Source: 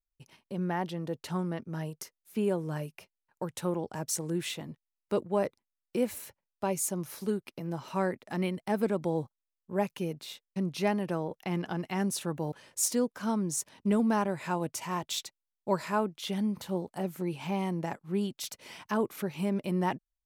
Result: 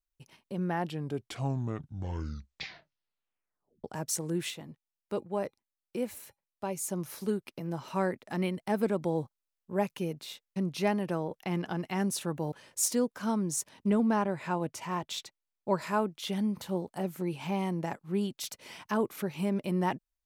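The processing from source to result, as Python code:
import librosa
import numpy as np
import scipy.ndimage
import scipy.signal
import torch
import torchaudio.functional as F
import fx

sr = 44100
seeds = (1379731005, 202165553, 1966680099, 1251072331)

y = fx.comb_fb(x, sr, f0_hz=810.0, decay_s=0.2, harmonics='odd', damping=0.0, mix_pct=40, at=(4.5, 6.89))
y = fx.high_shelf(y, sr, hz=5700.0, db=-9.5, at=(13.9, 15.82))
y = fx.edit(y, sr, fx.tape_stop(start_s=0.67, length_s=3.17), tone=tone)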